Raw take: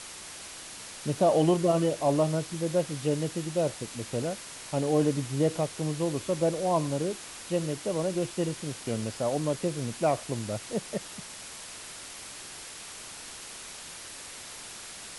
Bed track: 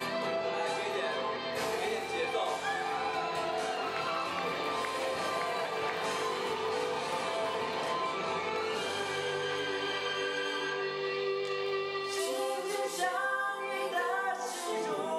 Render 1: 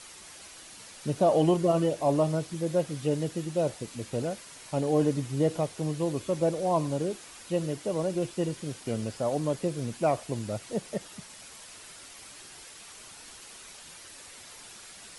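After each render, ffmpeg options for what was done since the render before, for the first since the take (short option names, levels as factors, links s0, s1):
-af "afftdn=nr=7:nf=-44"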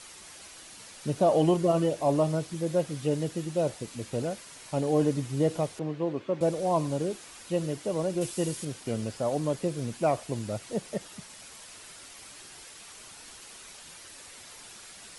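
-filter_complex "[0:a]asettb=1/sr,asplit=3[s0][s1][s2];[s0]atrim=end=5.794[s3];[s1]atrim=start=5.79:end=6.41,asetpts=PTS-STARTPTS,afade=t=in:d=0.004:c=qsin,afade=t=out:st=0.616:d=0.004:c=qsin,highpass=180,lowpass=2500[s4];[s2]atrim=start=6.406[s5];[s3][s4]acrossfade=d=0.004:c1=hsin:c2=qsin[s6];[s6][s5]acrossfade=d=0.004:c1=qsin:c2=hsin,asettb=1/sr,asplit=3[s7][s8][s9];[s7]atrim=end=8.214[s10];[s8]atrim=start=8.21:end=8.65,asetpts=PTS-STARTPTS,afade=t=in:d=0.004:c=qsin,afade=t=out:st=0.436:d=0.004:c=qsin,aemphasis=mode=production:type=50kf[s11];[s9]atrim=start=8.646[s12];[s10][s11]acrossfade=d=0.004:c1=hsin:c2=qsin[s13];[s13][s12]acrossfade=d=0.004:c1=qsin:c2=hsin"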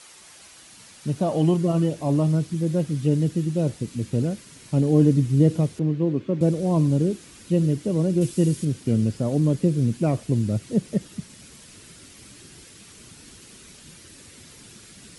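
-af "highpass=f=180:p=1,asubboost=boost=11:cutoff=230"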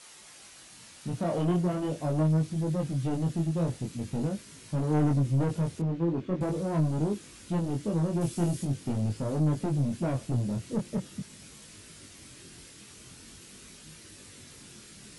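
-af "asoftclip=type=tanh:threshold=0.1,flanger=delay=19:depth=5.4:speed=0.43"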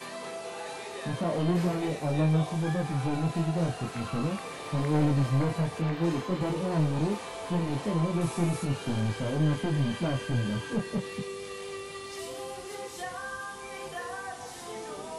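-filter_complex "[1:a]volume=0.501[s0];[0:a][s0]amix=inputs=2:normalize=0"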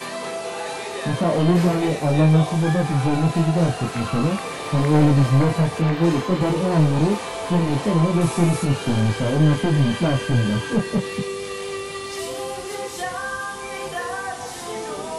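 -af "volume=2.99"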